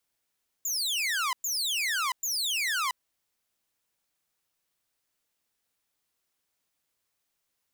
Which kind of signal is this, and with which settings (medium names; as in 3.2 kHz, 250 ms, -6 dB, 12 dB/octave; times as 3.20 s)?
burst of laser zaps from 7.3 kHz, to 970 Hz, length 0.68 s saw, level -23.5 dB, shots 3, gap 0.11 s